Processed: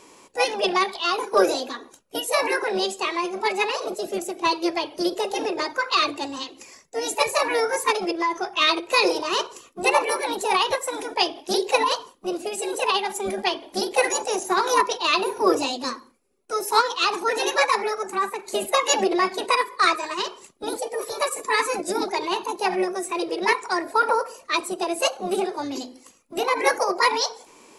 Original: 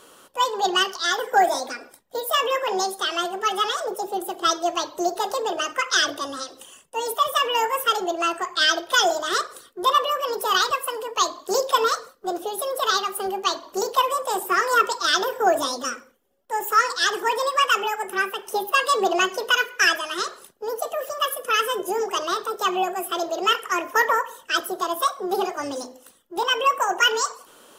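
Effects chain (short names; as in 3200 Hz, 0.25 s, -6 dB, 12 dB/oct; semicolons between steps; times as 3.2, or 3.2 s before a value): formant shift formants -5 st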